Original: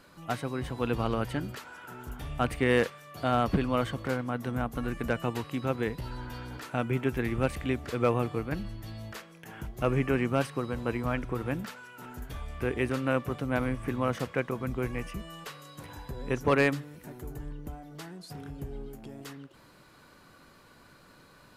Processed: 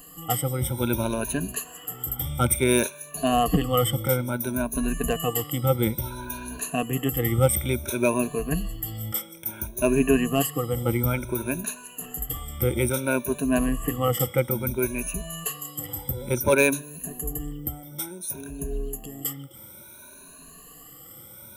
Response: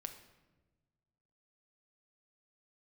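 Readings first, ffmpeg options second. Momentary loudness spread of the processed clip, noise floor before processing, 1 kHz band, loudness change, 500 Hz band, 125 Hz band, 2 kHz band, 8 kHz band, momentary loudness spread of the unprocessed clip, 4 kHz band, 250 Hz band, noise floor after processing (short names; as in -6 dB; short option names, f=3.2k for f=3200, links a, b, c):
13 LU, -57 dBFS, +3.5 dB, +5.0 dB, +5.0 dB, +5.5 dB, +3.0 dB, +21.0 dB, 17 LU, +8.0 dB, +5.0 dB, -47 dBFS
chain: -af "afftfilt=real='re*pow(10,22/40*sin(2*PI*(1.5*log(max(b,1)*sr/1024/100)/log(2)-(0.58)*(pts-256)/sr)))':imag='im*pow(10,22/40*sin(2*PI*(1.5*log(max(b,1)*sr/1024/100)/log(2)-(0.58)*(pts-256)/sr)))':win_size=1024:overlap=0.75,equalizer=f=1.8k:t=o:w=1.8:g=-6.5,bandreject=f=870:w=24,aexciter=amount=1.3:drive=2.2:freq=2.5k,aemphasis=mode=production:type=50kf,volume=1.5dB"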